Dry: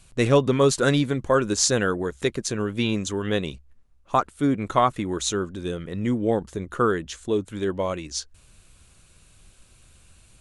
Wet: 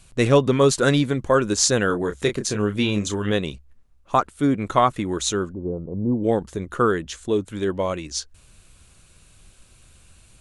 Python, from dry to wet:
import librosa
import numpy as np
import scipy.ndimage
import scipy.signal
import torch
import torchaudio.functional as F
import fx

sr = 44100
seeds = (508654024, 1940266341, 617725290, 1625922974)

y = fx.doubler(x, sr, ms=29.0, db=-7.0, at=(1.87, 3.32))
y = fx.steep_lowpass(y, sr, hz=960.0, slope=48, at=(5.52, 6.23), fade=0.02)
y = y * librosa.db_to_amplitude(2.0)